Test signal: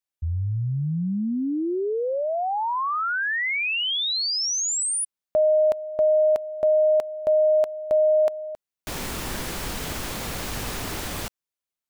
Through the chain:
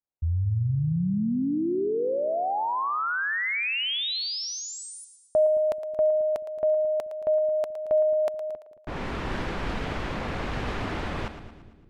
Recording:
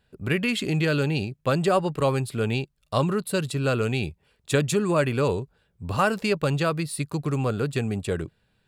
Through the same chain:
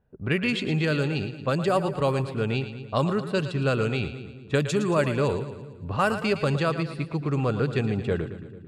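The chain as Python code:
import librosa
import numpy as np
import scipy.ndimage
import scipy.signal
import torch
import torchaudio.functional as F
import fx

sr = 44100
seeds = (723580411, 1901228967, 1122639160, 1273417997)

y = fx.env_lowpass(x, sr, base_hz=950.0, full_db=-17.0)
y = fx.echo_split(y, sr, split_hz=390.0, low_ms=216, high_ms=113, feedback_pct=52, wet_db=-11)
y = fx.rider(y, sr, range_db=3, speed_s=2.0)
y = F.gain(torch.from_numpy(y), -1.5).numpy()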